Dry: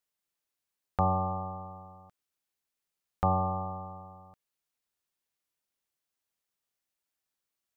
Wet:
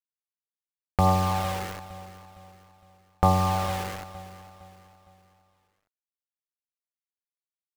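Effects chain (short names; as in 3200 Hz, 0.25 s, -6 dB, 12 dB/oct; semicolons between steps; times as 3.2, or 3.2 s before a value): zero-crossing step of -40.5 dBFS; compressor 1.5:1, threshold -34 dBFS, peak gain reduction 5 dB; sample gate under -36 dBFS; phaser 0.92 Hz, delay 2.4 ms, feedback 31%; on a send: feedback echo 0.46 s, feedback 41%, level -15.5 dB; on the sum: gain +8 dB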